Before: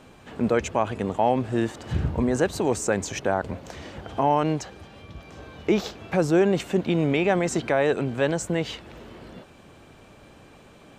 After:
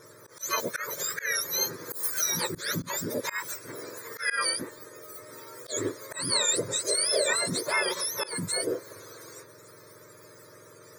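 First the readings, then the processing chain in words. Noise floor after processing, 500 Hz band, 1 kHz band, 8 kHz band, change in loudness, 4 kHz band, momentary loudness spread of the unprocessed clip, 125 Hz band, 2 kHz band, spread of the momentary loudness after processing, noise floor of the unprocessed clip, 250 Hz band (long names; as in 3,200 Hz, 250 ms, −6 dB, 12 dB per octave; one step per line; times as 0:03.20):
−52 dBFS, −9.5 dB, −9.0 dB, +9.5 dB, −3.5 dB, +8.0 dB, 20 LU, −14.0 dB, +1.0 dB, 19 LU, −51 dBFS, −14.0 dB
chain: frequency axis turned over on the octave scale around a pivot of 1,200 Hz
phaser with its sweep stopped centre 780 Hz, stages 6
volume swells 152 ms
level +5.5 dB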